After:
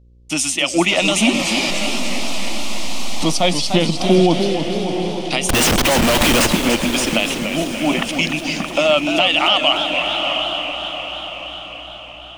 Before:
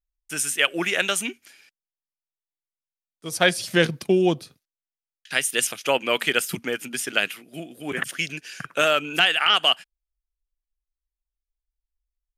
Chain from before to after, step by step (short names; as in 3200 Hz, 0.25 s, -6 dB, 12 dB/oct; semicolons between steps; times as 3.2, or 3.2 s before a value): 0.88–3.32 zero-crossing step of -27.5 dBFS; LPF 4700 Hz 12 dB/oct; in parallel at 0 dB: compressor 4:1, threshold -34 dBFS, peak gain reduction 17 dB; on the sum: fixed phaser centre 430 Hz, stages 6; 5.49–6.47 Schmitt trigger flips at -38 dBFS; on a send: diffused feedback echo 0.748 s, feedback 46%, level -11.5 dB; on the sum: buzz 60 Hz, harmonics 9, -61 dBFS -9 dB/oct; maximiser +16.5 dB; warbling echo 0.294 s, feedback 58%, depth 142 cents, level -7.5 dB; gain -4 dB